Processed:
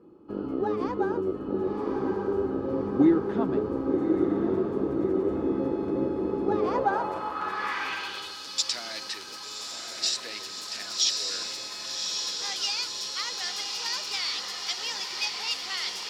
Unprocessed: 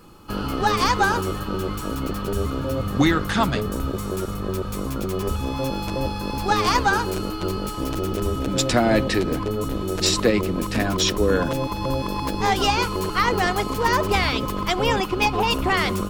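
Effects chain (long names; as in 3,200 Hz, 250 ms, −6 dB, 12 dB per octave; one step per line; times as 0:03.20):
feedback delay with all-pass diffusion 1,143 ms, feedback 67%, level −3.5 dB
0:09.00–0:10.31: dynamic equaliser 5,100 Hz, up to −5 dB, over −35 dBFS, Q 1.2
band-pass filter sweep 350 Hz → 5,000 Hz, 0:06.48–0:08.45
level +1.5 dB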